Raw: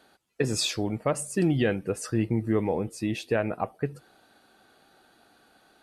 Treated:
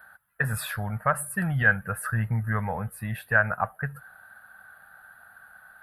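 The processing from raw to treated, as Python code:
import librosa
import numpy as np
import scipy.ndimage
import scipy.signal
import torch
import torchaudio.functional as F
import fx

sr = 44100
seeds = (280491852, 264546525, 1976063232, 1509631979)

y = fx.curve_eq(x, sr, hz=(110.0, 210.0, 320.0, 590.0, 1100.0, 1600.0, 2300.0, 3900.0, 6400.0, 11000.0), db=(0, -8, -29, -6, 2, 13, -10, -15, -28, 7))
y = F.gain(torch.from_numpy(y), 4.5).numpy()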